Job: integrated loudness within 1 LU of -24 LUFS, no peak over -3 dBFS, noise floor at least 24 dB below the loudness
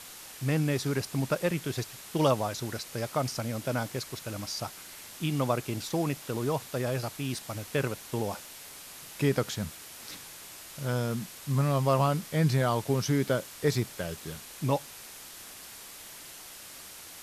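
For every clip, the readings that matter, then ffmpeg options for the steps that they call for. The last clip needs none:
noise floor -47 dBFS; noise floor target -55 dBFS; loudness -30.5 LUFS; peak -11.0 dBFS; loudness target -24.0 LUFS
-> -af "afftdn=nr=8:nf=-47"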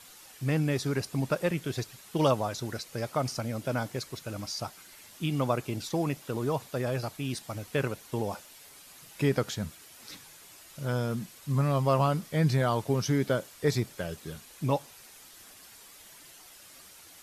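noise floor -52 dBFS; noise floor target -55 dBFS
-> -af "afftdn=nr=6:nf=-52"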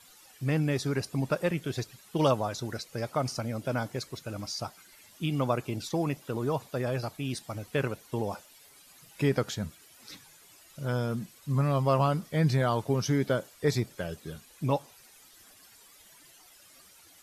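noise floor -57 dBFS; loudness -31.0 LUFS; peak -11.0 dBFS; loudness target -24.0 LUFS
-> -af "volume=7dB"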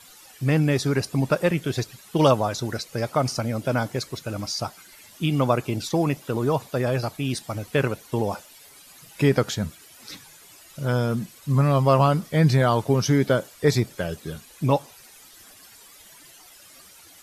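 loudness -24.0 LUFS; peak -4.0 dBFS; noise floor -50 dBFS

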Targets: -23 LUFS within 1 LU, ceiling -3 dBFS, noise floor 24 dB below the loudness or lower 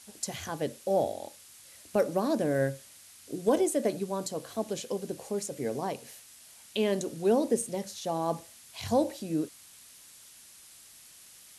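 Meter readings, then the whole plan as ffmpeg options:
noise floor -54 dBFS; noise floor target -55 dBFS; loudness -31.0 LUFS; peak -14.0 dBFS; loudness target -23.0 LUFS
-> -af "afftdn=nr=6:nf=-54"
-af "volume=8dB"

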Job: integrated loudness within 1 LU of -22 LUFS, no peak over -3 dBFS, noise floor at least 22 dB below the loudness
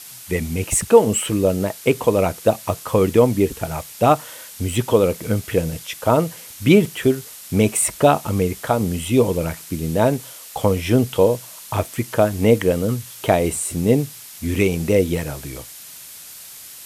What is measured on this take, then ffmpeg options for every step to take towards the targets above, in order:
noise floor -39 dBFS; noise floor target -42 dBFS; loudness -19.5 LUFS; peak -1.0 dBFS; loudness target -22.0 LUFS
-> -af "afftdn=nr=6:nf=-39"
-af "volume=-2.5dB"

